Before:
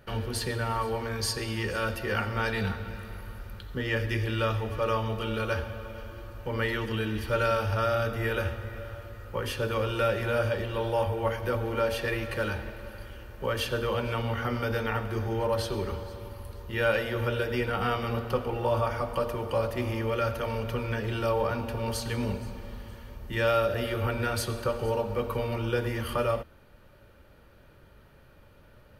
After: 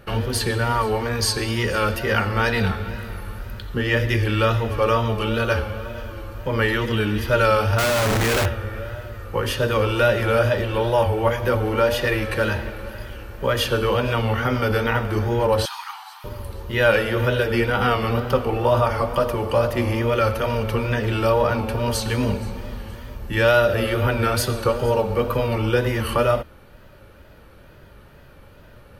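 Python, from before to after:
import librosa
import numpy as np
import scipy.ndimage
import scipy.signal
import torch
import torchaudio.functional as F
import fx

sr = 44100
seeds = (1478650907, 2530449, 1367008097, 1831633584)

y = fx.schmitt(x, sr, flips_db=-42.0, at=(7.78, 8.46))
y = fx.brickwall_highpass(y, sr, low_hz=710.0, at=(15.65, 16.24))
y = fx.wow_flutter(y, sr, seeds[0], rate_hz=2.1, depth_cents=80.0)
y = y * librosa.db_to_amplitude(8.5)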